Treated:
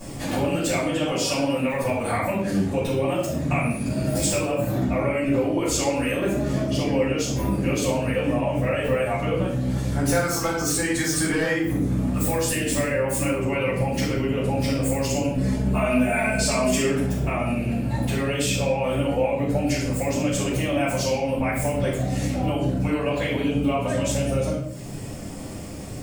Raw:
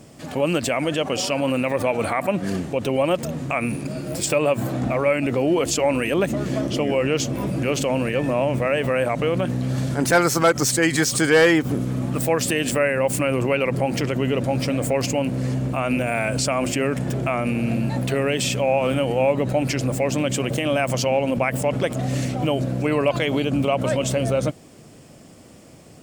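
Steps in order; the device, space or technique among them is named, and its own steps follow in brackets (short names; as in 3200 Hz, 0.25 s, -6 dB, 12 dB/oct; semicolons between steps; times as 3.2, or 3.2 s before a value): reverb removal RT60 0.64 s; ASMR close-microphone chain (low shelf 170 Hz +5 dB; compressor 8:1, threshold -32 dBFS, peak gain reduction 19.5 dB; high shelf 6200 Hz +6 dB); 15.35–16.83 comb 4.7 ms, depth 92%; shoebox room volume 210 m³, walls mixed, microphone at 5.4 m; gain -4 dB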